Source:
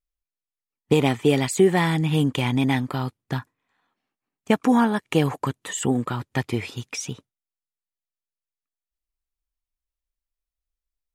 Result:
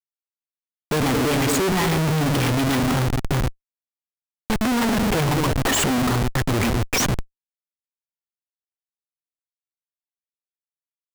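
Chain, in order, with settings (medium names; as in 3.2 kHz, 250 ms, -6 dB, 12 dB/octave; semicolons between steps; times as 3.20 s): companded quantiser 6-bit; repeats whose band climbs or falls 107 ms, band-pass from 210 Hz, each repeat 0.7 oct, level -7 dB; Schmitt trigger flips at -32.5 dBFS; trim +5 dB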